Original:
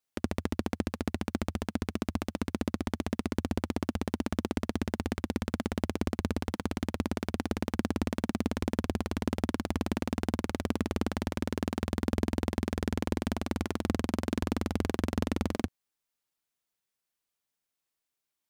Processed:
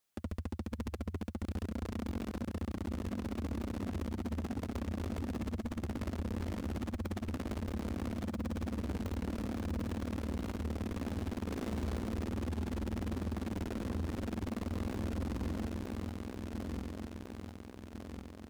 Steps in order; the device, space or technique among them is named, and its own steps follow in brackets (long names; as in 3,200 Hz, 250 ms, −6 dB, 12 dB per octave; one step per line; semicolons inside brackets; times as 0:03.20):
feedback delay that plays each chunk backwards 700 ms, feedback 60%, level −7 dB
0:11.43–0:11.97: double-tracking delay 36 ms −6.5 dB
open-reel tape (soft clipping −33.5 dBFS, distortion −3 dB; parametric band 73 Hz +3 dB 0.83 octaves; white noise bed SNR 46 dB)
level +1 dB